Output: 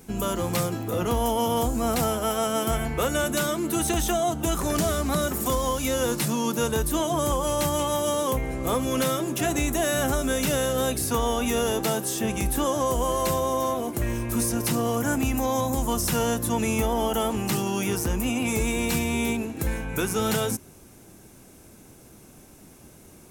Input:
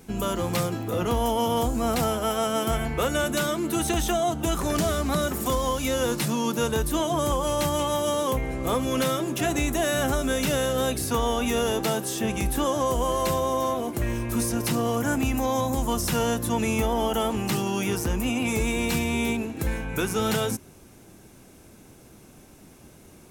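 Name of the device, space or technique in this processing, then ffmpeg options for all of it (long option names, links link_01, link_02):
exciter from parts: -filter_complex "[0:a]asplit=2[link_01][link_02];[link_02]highpass=5000,asoftclip=type=tanh:threshold=-25dB,volume=-5dB[link_03];[link_01][link_03]amix=inputs=2:normalize=0"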